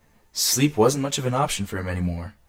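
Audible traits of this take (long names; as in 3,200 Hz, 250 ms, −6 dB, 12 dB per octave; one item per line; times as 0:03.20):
tremolo triangle 1.6 Hz, depth 40%
a quantiser's noise floor 12 bits, dither triangular
a shimmering, thickened sound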